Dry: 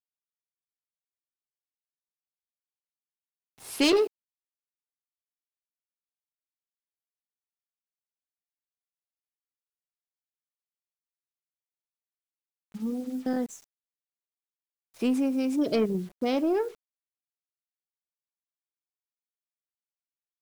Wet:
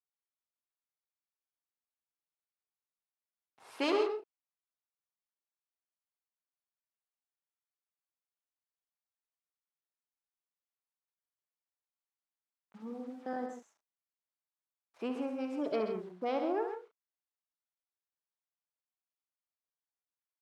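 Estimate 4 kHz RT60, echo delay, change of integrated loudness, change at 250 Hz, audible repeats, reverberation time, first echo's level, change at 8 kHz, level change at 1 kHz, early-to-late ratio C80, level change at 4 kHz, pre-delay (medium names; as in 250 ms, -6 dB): no reverb, 68 ms, -8.5 dB, -11.5 dB, 3, no reverb, -8.5 dB, under -15 dB, -1.0 dB, no reverb, -11.5 dB, no reverb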